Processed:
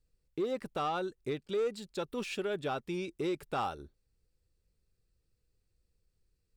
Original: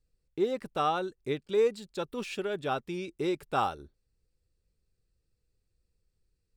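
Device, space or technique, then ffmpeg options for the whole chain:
soft clipper into limiter: -af "asoftclip=type=tanh:threshold=-21.5dB,alimiter=level_in=2.5dB:limit=-24dB:level=0:latency=1:release=129,volume=-2.5dB"

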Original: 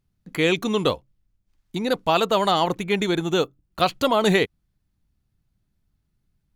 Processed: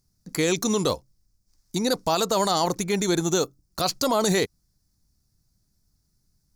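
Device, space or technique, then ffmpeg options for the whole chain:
over-bright horn tweeter: -af "highshelf=frequency=4000:width_type=q:width=3:gain=9.5,alimiter=limit=-13.5dB:level=0:latency=1:release=40,volume=1dB"

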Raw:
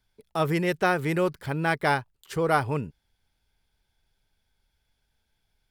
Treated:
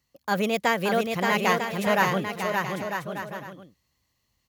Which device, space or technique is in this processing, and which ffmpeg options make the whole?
nightcore: -af "highpass=54,highshelf=frequency=5500:gain=4,aecho=1:1:730|1204|1513|1713|1844:0.631|0.398|0.251|0.158|0.1,asetrate=56007,aresample=44100"

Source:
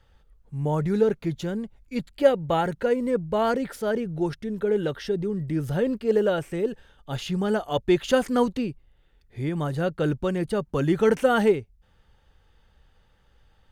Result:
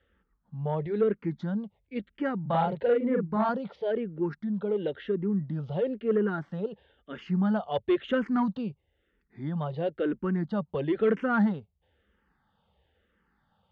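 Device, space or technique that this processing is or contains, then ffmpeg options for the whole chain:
barber-pole phaser into a guitar amplifier: -filter_complex "[0:a]asettb=1/sr,asplit=3[link_01][link_02][link_03];[link_01]atrim=end=2.414[link_04];[link_02]atrim=start=2.41:end=3.49,asetpts=PTS-STARTPTS,afade=type=in:duration=0.004:curve=qsin,afade=type=out:start_time=1.076:duration=0.004:curve=qsin,asplit=2[link_05][link_06];[link_06]adelay=42,volume=-2dB[link_07];[link_05][link_07]amix=inputs=2:normalize=0,atrim=end_sample=47628[link_08];[link_03]atrim=start=3.486[link_09];[link_04][link_08]acrossfade=duration=0.004:curve1=hsin:curve2=qsin[link_10];[link_10][link_09]acrossfade=duration=0.004:curve1=qsin:curve2=hsin,asplit=2[link_11][link_12];[link_12]afreqshift=-1[link_13];[link_11][link_13]amix=inputs=2:normalize=1,asoftclip=type=tanh:threshold=-15dB,highpass=91,equalizer=frequency=120:width_type=q:width=4:gain=-9,equalizer=frequency=200:width_type=q:width=4:gain=6,equalizer=frequency=2500:width_type=q:width=4:gain=-5,lowpass=frequency=3400:width=0.5412,lowpass=frequency=3400:width=1.3066,volume=-1.5dB"

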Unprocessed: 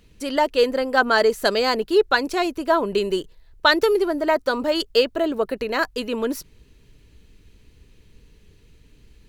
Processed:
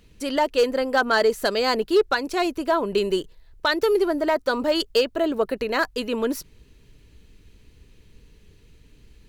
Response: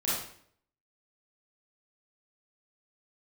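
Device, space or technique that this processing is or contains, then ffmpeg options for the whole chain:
limiter into clipper: -af "alimiter=limit=-9dB:level=0:latency=1:release=324,asoftclip=type=hard:threshold=-12dB"

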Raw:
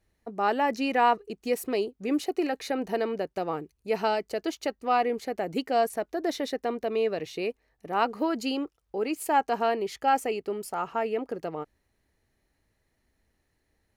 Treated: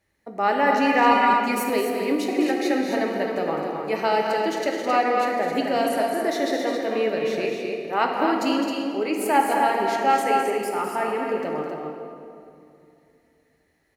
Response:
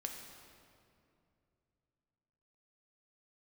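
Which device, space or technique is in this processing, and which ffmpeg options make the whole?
stadium PA: -filter_complex "[0:a]highpass=frequency=140:poles=1,equalizer=frequency=2000:width_type=o:width=0.38:gain=6,aecho=1:1:209.9|265.3:0.398|0.501[link_01];[1:a]atrim=start_sample=2205[link_02];[link_01][link_02]afir=irnorm=-1:irlink=0,asettb=1/sr,asplit=3[link_03][link_04][link_05];[link_03]atrim=end=1.114[link_06];[link_04]atrim=start=1.11:end=1.7,asetpts=PTS-STARTPTS,afade=type=in:duration=0.004:curve=qsin,afade=type=out:start_time=0.586:duration=0.004:curve=qsin,aecho=1:1:5:0.87,atrim=end_sample=26019[link_07];[link_05]atrim=start=1.696[link_08];[link_06][link_07]acrossfade=duration=0.004:curve1=hsin:curve2=qsin[link_09];[link_09][link_08]acrossfade=duration=0.004:curve1=qsin:curve2=hsin,volume=5.5dB"

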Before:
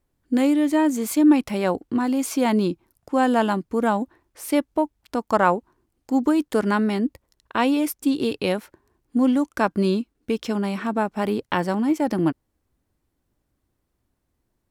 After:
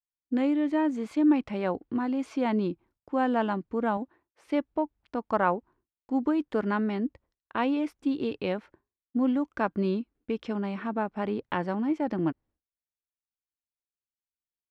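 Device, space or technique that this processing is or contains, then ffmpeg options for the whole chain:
hearing-loss simulation: -filter_complex "[0:a]lowpass=2900,agate=range=-33dB:threshold=-47dB:ratio=3:detection=peak,asettb=1/sr,asplit=3[link_01][link_02][link_03];[link_01]atrim=end=3.974[link_04];[link_02]atrim=start=3.97:end=4.45,asetpts=PTS-STARTPTS,afade=type=in:duration=0.004:curve=qsin,afade=type=out:start_time=0.476:duration=0.004:curve=qsin,highpass=frequency=180:poles=1[link_05];[link_03]atrim=start=4.446[link_06];[link_04][link_05]acrossfade=duration=0.004:curve1=hsin:curve2=qsin[link_07];[link_07][link_06]acrossfade=duration=0.004:curve1=qsin:curve2=hsin,volume=-6.5dB"

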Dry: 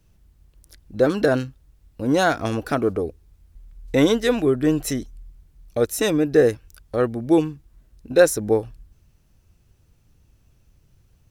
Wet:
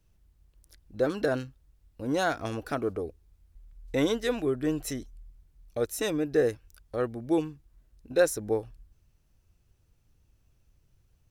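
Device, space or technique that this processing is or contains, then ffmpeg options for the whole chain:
low shelf boost with a cut just above: -af "lowshelf=frequency=89:gain=8,lowshelf=frequency=160:gain=-6,equalizer=frequency=200:width_type=o:width=0.77:gain=-2,volume=-8dB"

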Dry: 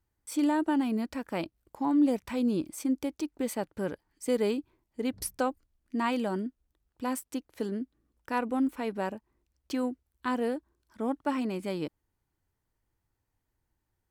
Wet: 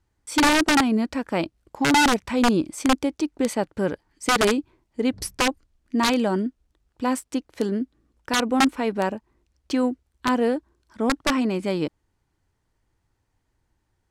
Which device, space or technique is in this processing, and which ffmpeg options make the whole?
overflowing digital effects unit: -af "aeval=exprs='(mod(11.2*val(0)+1,2)-1)/11.2':channel_layout=same,lowpass=8400,volume=8.5dB"

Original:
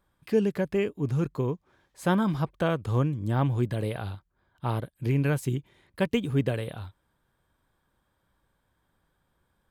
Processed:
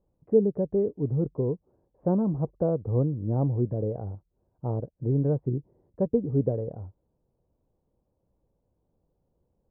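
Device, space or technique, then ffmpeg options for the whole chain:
under water: -af "lowpass=frequency=700:width=0.5412,lowpass=frequency=700:width=1.3066,equalizer=frequency=470:width_type=o:width=0.36:gain=5"

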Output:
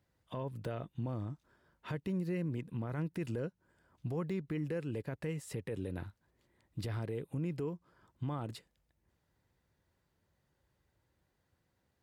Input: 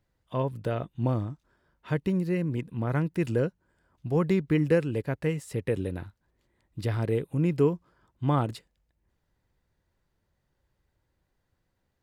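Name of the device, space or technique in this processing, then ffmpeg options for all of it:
podcast mastering chain: -af "highpass=63,deesser=0.95,acompressor=threshold=-34dB:ratio=3,alimiter=level_in=4.5dB:limit=-24dB:level=0:latency=1:release=14,volume=-4.5dB" -ar 48000 -c:a libmp3lame -b:a 96k

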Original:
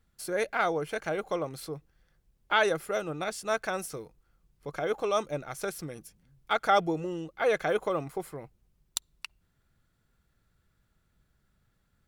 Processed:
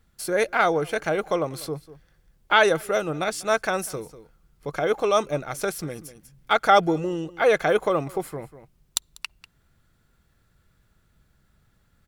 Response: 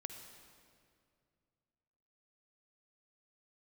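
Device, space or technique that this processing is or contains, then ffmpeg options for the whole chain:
ducked delay: -filter_complex "[0:a]asplit=3[link_01][link_02][link_03];[link_02]adelay=194,volume=-9dB[link_04];[link_03]apad=whole_len=541219[link_05];[link_04][link_05]sidechaincompress=threshold=-47dB:ratio=5:attack=5.7:release=317[link_06];[link_01][link_06]amix=inputs=2:normalize=0,volume=7dB"

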